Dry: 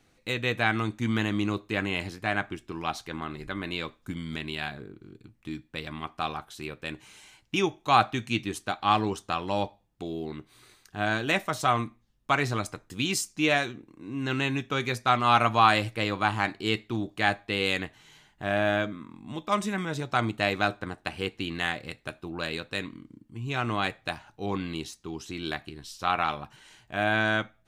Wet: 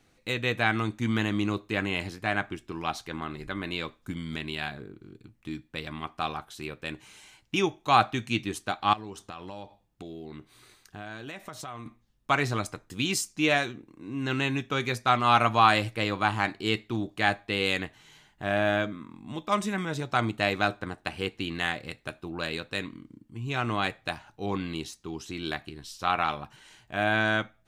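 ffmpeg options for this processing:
-filter_complex "[0:a]asettb=1/sr,asplit=3[s0][s1][s2];[s0]atrim=end=8.934[s3];[s1]atrim=start=8.93:end=11.86,asetpts=PTS-STARTPTS,afade=t=in:d=0.004:c=qsin,afade=t=out:st=2.926:d=0.004:c=qsin,acompressor=threshold=0.0141:ratio=6:attack=3.2:release=140:knee=1:detection=peak[s4];[s2]atrim=start=11.856[s5];[s3][s4]acrossfade=d=0.004:c1=hsin:c2=qsin[s6];[s6][s5]acrossfade=d=0.004:c1=qsin:c2=hsin"

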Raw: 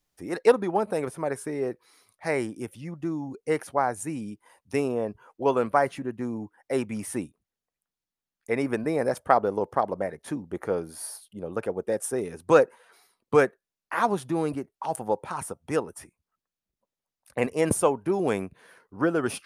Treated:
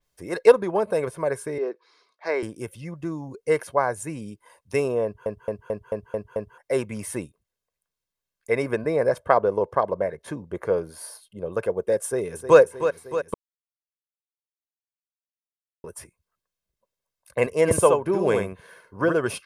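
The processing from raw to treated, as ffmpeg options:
-filter_complex "[0:a]asettb=1/sr,asplit=3[s0][s1][s2];[s0]atrim=end=1.584[s3];[s1]atrim=start=1.58:end=2.43,asetpts=PTS-STARTPTS,afade=t=in:d=0.004:c=qsin,afade=t=out:st=0.846:d=0.004:c=qsin,highpass=f=280:w=0.5412,highpass=f=280:w=1.3066,equalizer=f=550:t=q:w=4:g=-6,equalizer=f=2000:t=q:w=4:g=-4,equalizer=f=2900:t=q:w=4:g=-4,lowpass=f=5200:w=0.5412,lowpass=f=5200:w=1.3066[s4];[s2]atrim=start=2.426[s5];[s3][s4]acrossfade=d=0.004:c1=hsin:c2=qsin[s6];[s6][s5]acrossfade=d=0.004:c1=qsin:c2=hsin,asettb=1/sr,asplit=3[s7][s8][s9];[s7]atrim=end=8.734[s10];[s8]atrim=start=8.73:end=11.52,asetpts=PTS-STARTPTS,afade=t=in:d=0.004:c=qsin,afade=t=out:st=2.786:d=0.004:c=qsin,highshelf=f=5400:g=-6.5[s11];[s9]atrim=start=11.516[s12];[s10][s11]acrossfade=d=0.004:c1=hsin:c2=qsin[s13];[s13][s12]acrossfade=d=0.004:c1=qsin:c2=hsin,asplit=2[s14][s15];[s15]afade=t=in:st=12.04:d=0.01,afade=t=out:st=12.59:d=0.01,aecho=0:1:310|620|930|1240|1550|1860|2170|2480|2790|3100:0.316228|0.221359|0.154952|0.108466|0.0759263|0.0531484|0.0372039|0.0260427|0.0182299|0.0127609[s16];[s14][s16]amix=inputs=2:normalize=0,asplit=3[s17][s18][s19];[s17]afade=t=out:st=17.67:d=0.02[s20];[s18]aecho=1:1:72:0.631,afade=t=in:st=17.67:d=0.02,afade=t=out:st=19.12:d=0.02[s21];[s19]afade=t=in:st=19.12:d=0.02[s22];[s20][s21][s22]amix=inputs=3:normalize=0,asplit=10[s23][s24][s25][s26][s27][s28][s29][s30][s31][s32];[s23]atrim=end=5.262[s33];[s24]atrim=start=5.038:end=5.262[s34];[s25]atrim=start=5.038:end=5.262[s35];[s26]atrim=start=5.038:end=5.262[s36];[s27]atrim=start=5.038:end=5.262[s37];[s28]atrim=start=5.038:end=5.262[s38];[s29]atrim=start=5.038:end=5.262[s39];[s30]atrim=start=6.578:end=13.34,asetpts=PTS-STARTPTS,afade=t=out:st=6.758:d=0.004:c=hsin[s40];[s31]atrim=start=13.34:end=15.84,asetpts=PTS-STARTPTS,volume=0[s41];[s32]atrim=start=15.84,asetpts=PTS-STARTPTS,afade=t=in:d=0.004:c=hsin[s42];[s33][s34]acrossfade=d=0.004:c1=hsin:c2=hsin[s43];[s43][s35]acrossfade=d=0.004:c1=hsin:c2=hsin[s44];[s44][s36]acrossfade=d=0.004:c1=hsin:c2=hsin[s45];[s45][s37]acrossfade=d=0.004:c1=hsin:c2=hsin[s46];[s46][s38]acrossfade=d=0.004:c1=hsin:c2=hsin[s47];[s47][s39]acrossfade=d=0.004:c1=hsin:c2=hsin[s48];[s40][s41][s42]concat=n=3:v=0:a=1[s49];[s48][s49]acrossfade=d=0.004:c1=hsin:c2=hsin,aecho=1:1:1.9:0.5,adynamicequalizer=threshold=0.00501:dfrequency=4500:dqfactor=0.7:tfrequency=4500:tqfactor=0.7:attack=5:release=100:ratio=0.375:range=2:mode=cutabove:tftype=highshelf,volume=1.26"

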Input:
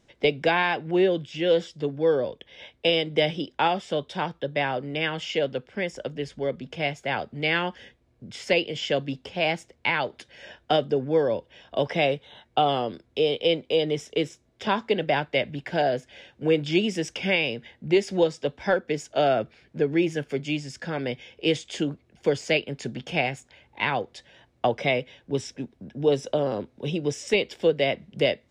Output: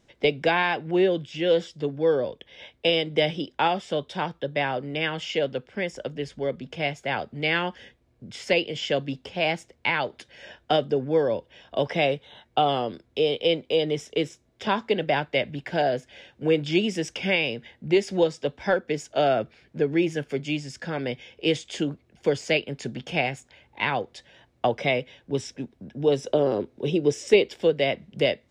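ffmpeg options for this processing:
-filter_complex "[0:a]asettb=1/sr,asplit=3[s0][s1][s2];[s0]atrim=end=26.274[s3];[s1]atrim=start=26.27:end=27.48,asetpts=PTS-STARTPTS,afade=t=in:d=0.004:c=qsin,afade=t=out:st=1.206:d=0.004:c=qsin,equalizer=f=380:w=2.1:g=8[s4];[s2]atrim=start=27.476[s5];[s3][s4]acrossfade=d=0.004:c1=hsin:c2=qsin[s6];[s6][s5]acrossfade=d=0.004:c1=qsin:c2=hsin"

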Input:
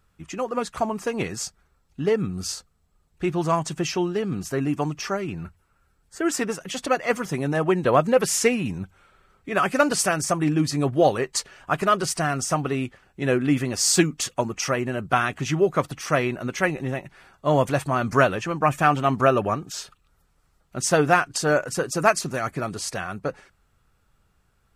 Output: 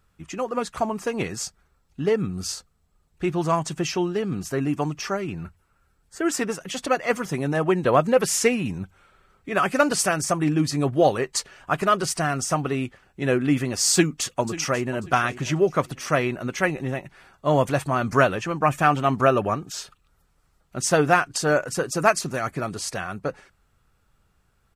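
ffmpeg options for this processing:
-filter_complex "[0:a]asplit=2[s0][s1];[s1]afade=t=in:st=13.93:d=0.01,afade=t=out:st=15:d=0.01,aecho=0:1:540|1080|1620:0.16788|0.0419701|0.0104925[s2];[s0][s2]amix=inputs=2:normalize=0"

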